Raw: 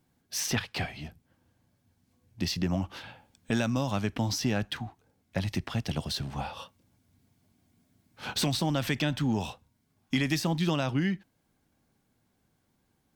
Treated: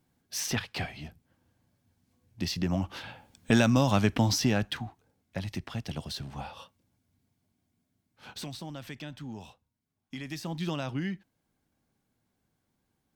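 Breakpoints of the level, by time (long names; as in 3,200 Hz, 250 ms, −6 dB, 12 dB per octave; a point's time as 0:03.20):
0:02.50 −1.5 dB
0:03.51 +5.5 dB
0:04.09 +5.5 dB
0:05.40 −4.5 dB
0:06.51 −4.5 dB
0:08.81 −13 dB
0:10.16 −13 dB
0:10.64 −5 dB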